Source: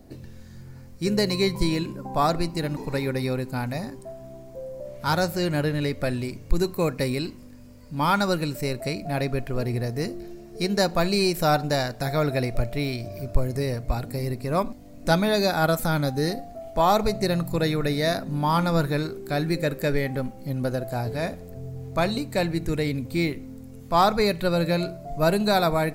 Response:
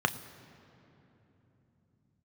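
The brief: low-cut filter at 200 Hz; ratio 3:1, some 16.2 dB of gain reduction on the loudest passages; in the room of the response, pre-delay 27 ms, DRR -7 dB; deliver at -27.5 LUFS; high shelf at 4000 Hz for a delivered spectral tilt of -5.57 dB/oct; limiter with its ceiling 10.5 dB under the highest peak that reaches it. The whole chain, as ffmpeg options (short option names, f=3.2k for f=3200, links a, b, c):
-filter_complex "[0:a]highpass=200,highshelf=f=4k:g=4.5,acompressor=threshold=-38dB:ratio=3,alimiter=level_in=6dB:limit=-24dB:level=0:latency=1,volume=-6dB,asplit=2[a][b];[1:a]atrim=start_sample=2205,adelay=27[c];[b][c]afir=irnorm=-1:irlink=0,volume=-3.5dB[d];[a][d]amix=inputs=2:normalize=0,volume=7dB"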